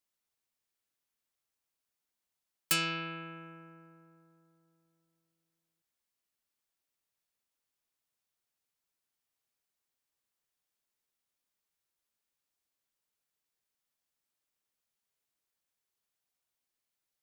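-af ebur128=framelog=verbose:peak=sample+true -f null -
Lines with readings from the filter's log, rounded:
Integrated loudness:
  I:         -32.7 LUFS
  Threshold: -46.6 LUFS
Loudness range:
  LRA:        14.1 LU
  Threshold: -59.9 LUFS
  LRA low:   -52.5 LUFS
  LRA high:  -38.4 LUFS
Sample peak:
  Peak:      -14.2 dBFS
True peak:
  Peak:      -12.6 dBFS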